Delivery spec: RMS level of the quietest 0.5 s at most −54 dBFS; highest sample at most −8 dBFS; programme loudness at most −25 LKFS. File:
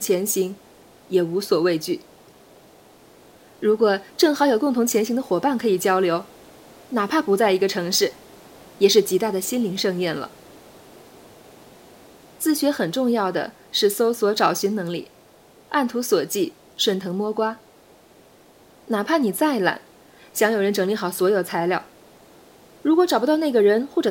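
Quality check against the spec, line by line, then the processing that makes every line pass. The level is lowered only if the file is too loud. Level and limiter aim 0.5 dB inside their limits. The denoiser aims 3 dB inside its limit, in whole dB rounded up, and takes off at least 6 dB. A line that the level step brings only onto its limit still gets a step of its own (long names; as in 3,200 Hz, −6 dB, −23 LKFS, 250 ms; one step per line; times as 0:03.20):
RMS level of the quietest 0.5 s −51 dBFS: out of spec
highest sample −3.5 dBFS: out of spec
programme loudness −21.5 LKFS: out of spec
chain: level −4 dB
brickwall limiter −8.5 dBFS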